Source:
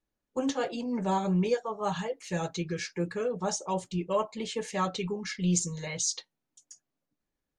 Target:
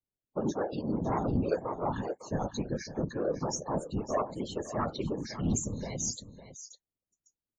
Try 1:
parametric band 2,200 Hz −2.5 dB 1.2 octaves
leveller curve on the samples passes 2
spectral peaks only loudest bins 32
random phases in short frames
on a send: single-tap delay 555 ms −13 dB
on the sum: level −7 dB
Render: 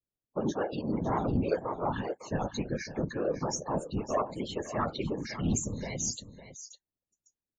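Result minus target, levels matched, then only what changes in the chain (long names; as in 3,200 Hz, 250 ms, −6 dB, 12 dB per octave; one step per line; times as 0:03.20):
2,000 Hz band +3.5 dB
change: parametric band 2,200 Hz −8.5 dB 1.2 octaves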